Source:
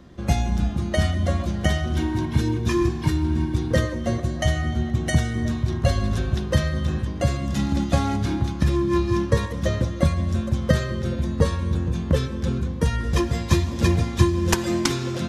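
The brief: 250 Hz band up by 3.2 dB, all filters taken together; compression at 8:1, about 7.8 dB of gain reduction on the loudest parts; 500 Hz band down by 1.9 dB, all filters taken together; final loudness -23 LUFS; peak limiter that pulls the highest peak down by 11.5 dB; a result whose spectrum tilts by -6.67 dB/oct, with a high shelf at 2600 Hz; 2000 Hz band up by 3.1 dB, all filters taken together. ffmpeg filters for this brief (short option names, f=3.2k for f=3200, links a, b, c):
-af "equalizer=f=250:t=o:g=6.5,equalizer=f=500:t=o:g=-6.5,equalizer=f=2k:t=o:g=6,highshelf=f=2.6k:g=-5.5,acompressor=threshold=-19dB:ratio=8,volume=4.5dB,alimiter=limit=-13.5dB:level=0:latency=1"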